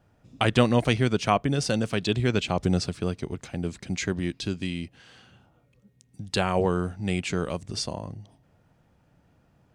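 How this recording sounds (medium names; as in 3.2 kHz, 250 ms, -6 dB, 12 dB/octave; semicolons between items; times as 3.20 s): noise floor -64 dBFS; spectral tilt -5.0 dB/octave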